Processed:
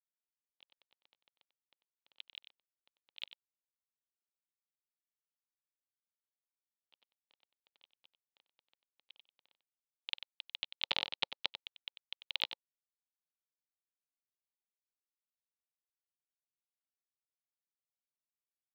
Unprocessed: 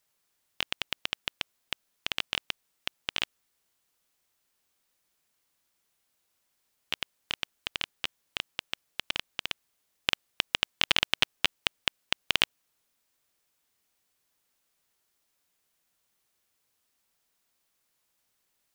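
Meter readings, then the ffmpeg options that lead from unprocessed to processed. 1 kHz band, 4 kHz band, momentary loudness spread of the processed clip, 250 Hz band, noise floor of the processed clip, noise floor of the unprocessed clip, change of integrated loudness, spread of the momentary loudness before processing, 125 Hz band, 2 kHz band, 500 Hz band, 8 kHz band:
-12.0 dB, -11.5 dB, 17 LU, -16.5 dB, under -85 dBFS, -77 dBFS, -8.5 dB, 12 LU, under -20 dB, -15.0 dB, -11.5 dB, under -25 dB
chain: -af "agate=range=-49dB:threshold=-29dB:ratio=16:detection=peak,acompressor=threshold=-52dB:ratio=2,highpass=230,equalizer=f=540:t=q:w=4:g=5,equalizer=f=870:t=q:w=4:g=6,equalizer=f=1.6k:t=q:w=4:g=-7,equalizer=f=2.8k:t=q:w=4:g=-4,equalizer=f=4k:t=q:w=4:g=7,lowpass=f=4.6k:w=0.5412,lowpass=f=4.6k:w=1.3066,aecho=1:1:94:0.266,volume=9dB"

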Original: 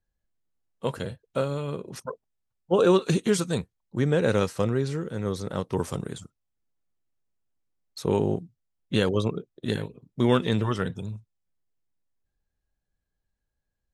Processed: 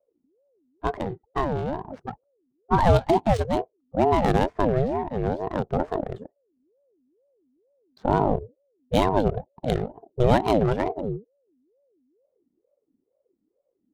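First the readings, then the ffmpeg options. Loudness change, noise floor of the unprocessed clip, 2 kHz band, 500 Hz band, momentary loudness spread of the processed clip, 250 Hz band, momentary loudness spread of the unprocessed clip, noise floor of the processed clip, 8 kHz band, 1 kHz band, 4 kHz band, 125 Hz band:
+2.0 dB, -83 dBFS, 0.0 dB, +2.0 dB, 13 LU, +0.5 dB, 16 LU, -76 dBFS, n/a, +10.0 dB, -3.0 dB, +1.5 dB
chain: -af "lowshelf=f=220:g=8.5,adynamicsmooth=sensitivity=4.5:basefreq=870,aeval=exprs='val(0)*sin(2*PI*410*n/s+410*0.4/2.2*sin(2*PI*2.2*n/s))':c=same,volume=2dB"

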